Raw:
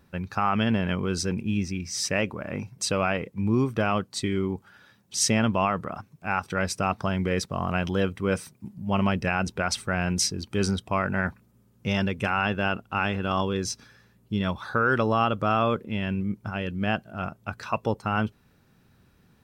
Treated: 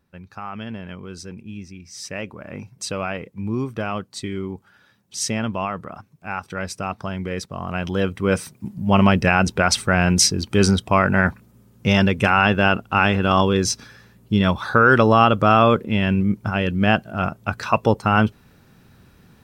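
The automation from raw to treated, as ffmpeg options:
-af "volume=9dB,afade=t=in:st=1.83:d=0.8:silence=0.446684,afade=t=in:st=7.64:d=1.13:silence=0.298538"

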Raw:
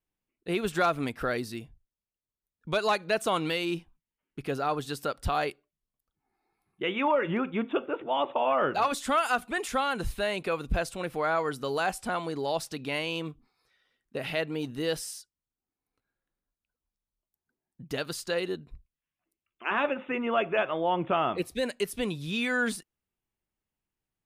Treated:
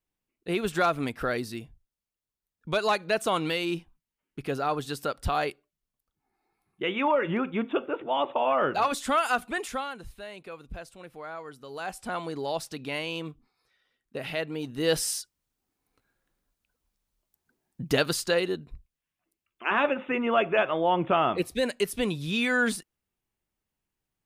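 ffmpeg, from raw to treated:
-af "volume=23dB,afade=t=out:st=9.48:d=0.52:silence=0.223872,afade=t=in:st=11.68:d=0.51:silence=0.281838,afade=t=in:st=14.73:d=0.4:silence=0.281838,afade=t=out:st=17.84:d=0.64:silence=0.446684"

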